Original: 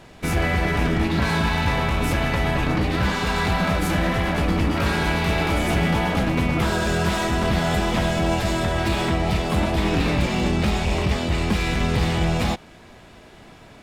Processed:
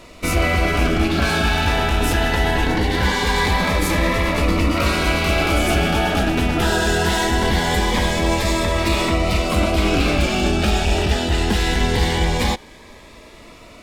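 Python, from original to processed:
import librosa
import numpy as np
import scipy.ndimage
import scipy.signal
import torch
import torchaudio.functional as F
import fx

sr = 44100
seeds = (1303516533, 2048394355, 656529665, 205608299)

y = fx.peak_eq(x, sr, hz=140.0, db=-11.5, octaves=1.2)
y = fx.notch_cascade(y, sr, direction='rising', hz=0.22)
y = y * librosa.db_to_amplitude(7.0)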